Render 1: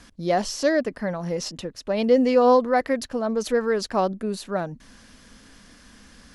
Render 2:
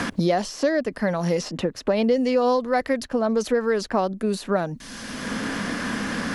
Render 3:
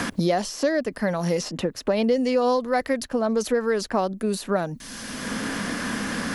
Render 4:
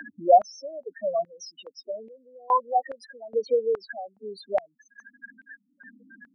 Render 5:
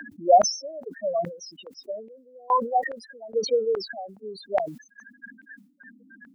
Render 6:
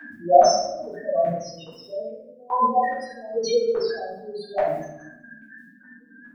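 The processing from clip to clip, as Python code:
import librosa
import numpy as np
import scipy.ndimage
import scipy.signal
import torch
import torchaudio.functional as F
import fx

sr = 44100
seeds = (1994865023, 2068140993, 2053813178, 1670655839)

y1 = fx.band_squash(x, sr, depth_pct=100)
y2 = fx.high_shelf(y1, sr, hz=9600.0, db=11.0)
y2 = F.gain(torch.from_numpy(y2), -1.0).numpy()
y3 = fx.spec_topn(y2, sr, count=4)
y3 = fx.filter_held_highpass(y3, sr, hz=2.4, low_hz=640.0, high_hz=2300.0)
y4 = fx.sustainer(y3, sr, db_per_s=120.0)
y5 = fx.room_shoebox(y4, sr, seeds[0], volume_m3=250.0, walls='mixed', distance_m=3.6)
y5 = F.gain(torch.from_numpy(y5), -8.5).numpy()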